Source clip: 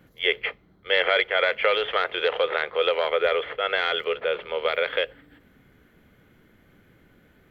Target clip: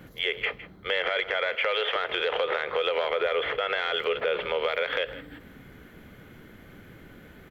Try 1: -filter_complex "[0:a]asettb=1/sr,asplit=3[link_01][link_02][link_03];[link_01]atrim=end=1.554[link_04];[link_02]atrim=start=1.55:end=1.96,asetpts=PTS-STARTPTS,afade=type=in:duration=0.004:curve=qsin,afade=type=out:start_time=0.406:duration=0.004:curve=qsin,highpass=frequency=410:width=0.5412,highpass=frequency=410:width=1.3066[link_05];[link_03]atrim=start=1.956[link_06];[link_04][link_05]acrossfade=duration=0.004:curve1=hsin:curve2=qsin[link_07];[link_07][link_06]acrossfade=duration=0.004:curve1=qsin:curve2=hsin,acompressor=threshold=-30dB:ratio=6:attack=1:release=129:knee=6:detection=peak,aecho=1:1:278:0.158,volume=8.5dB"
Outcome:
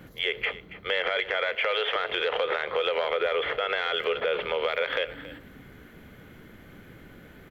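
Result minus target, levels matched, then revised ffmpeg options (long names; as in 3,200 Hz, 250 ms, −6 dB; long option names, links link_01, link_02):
echo 119 ms late
-filter_complex "[0:a]asettb=1/sr,asplit=3[link_01][link_02][link_03];[link_01]atrim=end=1.554[link_04];[link_02]atrim=start=1.55:end=1.96,asetpts=PTS-STARTPTS,afade=type=in:duration=0.004:curve=qsin,afade=type=out:start_time=0.406:duration=0.004:curve=qsin,highpass=frequency=410:width=0.5412,highpass=frequency=410:width=1.3066[link_05];[link_03]atrim=start=1.956[link_06];[link_04][link_05]acrossfade=duration=0.004:curve1=hsin:curve2=qsin[link_07];[link_07][link_06]acrossfade=duration=0.004:curve1=qsin:curve2=hsin,acompressor=threshold=-30dB:ratio=6:attack=1:release=129:knee=6:detection=peak,aecho=1:1:159:0.158,volume=8.5dB"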